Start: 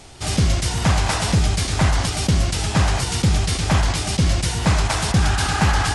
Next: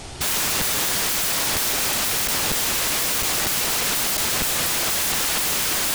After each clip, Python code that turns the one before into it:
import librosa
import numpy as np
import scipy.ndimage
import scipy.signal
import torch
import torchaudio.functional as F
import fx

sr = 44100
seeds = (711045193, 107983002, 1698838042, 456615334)

y = (np.mod(10.0 ** (24.5 / 20.0) * x + 1.0, 2.0) - 1.0) / 10.0 ** (24.5 / 20.0)
y = y * librosa.db_to_amplitude(7.0)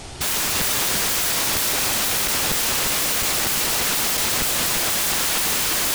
y = x + 10.0 ** (-6.0 / 20.0) * np.pad(x, (int(346 * sr / 1000.0), 0))[:len(x)]